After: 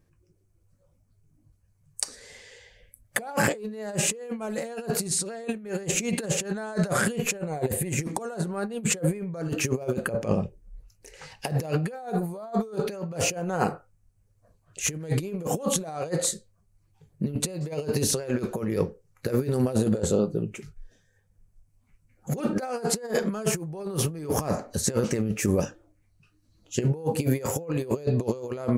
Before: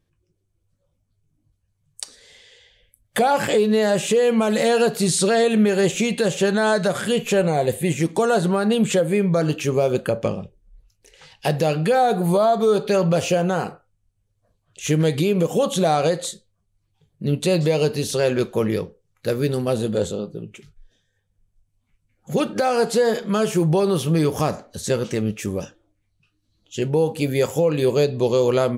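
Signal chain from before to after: peaking EQ 3.4 kHz -11 dB 0.59 oct; compressor with a negative ratio -25 dBFS, ratio -0.5; trim -1.5 dB

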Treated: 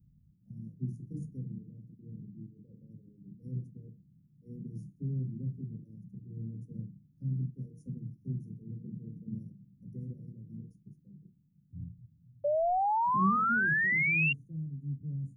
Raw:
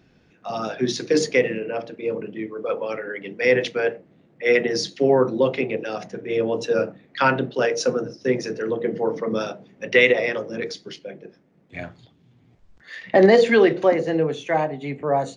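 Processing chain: inverse Chebyshev band-stop 780–4000 Hz, stop band 80 dB; painted sound rise, 12.44–14.33 s, 570–2800 Hz -28 dBFS

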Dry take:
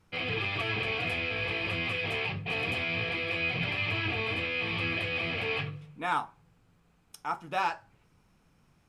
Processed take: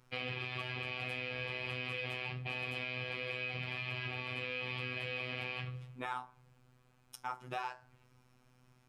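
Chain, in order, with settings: compression, threshold -36 dBFS, peak gain reduction 11.5 dB; robot voice 126 Hz; trim +1 dB

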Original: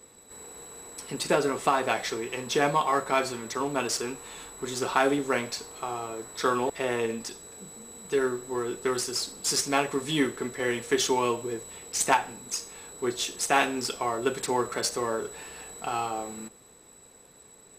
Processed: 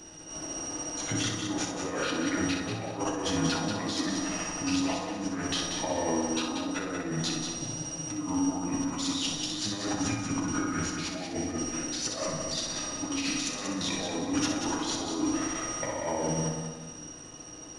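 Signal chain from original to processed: rotating-head pitch shifter -5.5 st; compressor with a negative ratio -37 dBFS, ratio -1; feedback comb 620 Hz, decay 0.47 s, mix 60%; on a send: multi-head delay 62 ms, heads first and third, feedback 53%, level -6.5 dB; on the sum: FDN reverb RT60 1.2 s, low-frequency decay 1.2×, high-frequency decay 0.4×, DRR 4 dB; trim +8.5 dB

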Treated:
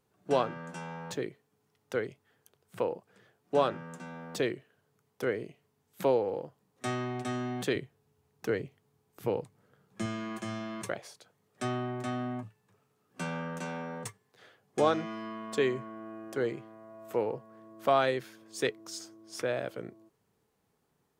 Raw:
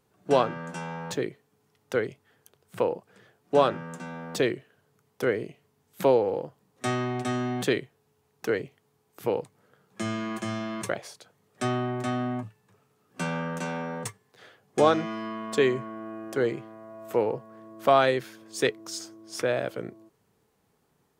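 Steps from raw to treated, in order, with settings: 7.75–10.06 s: bass shelf 190 Hz +9 dB; trim -5.5 dB

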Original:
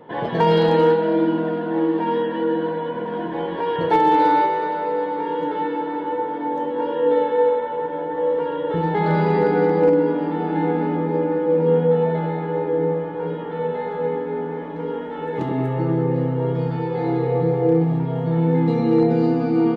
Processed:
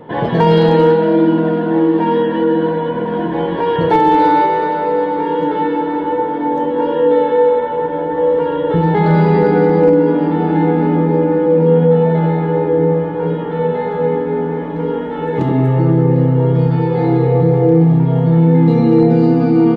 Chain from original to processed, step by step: bass shelf 210 Hz +8.5 dB; in parallel at 0 dB: peak limiter -12.5 dBFS, peak gain reduction 8.5 dB

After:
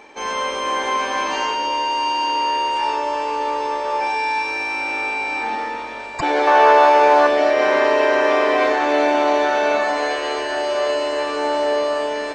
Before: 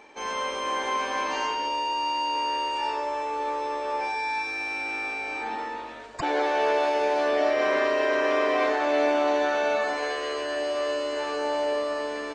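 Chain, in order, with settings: 6.47–7.27 s: peaking EQ 1.1 kHz +11 dB 1.2 oct; echo that smears into a reverb 1039 ms, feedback 63%, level -13.5 dB; trim +6.5 dB

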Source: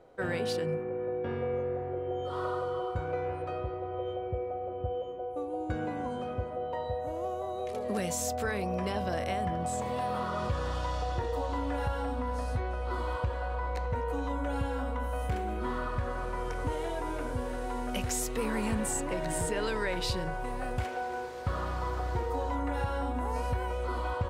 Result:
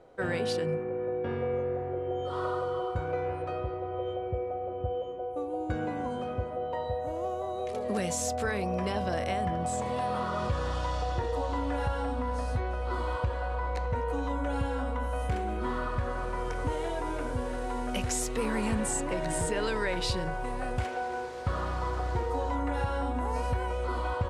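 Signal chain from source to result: low-pass 11 kHz 24 dB/octave; trim +1.5 dB

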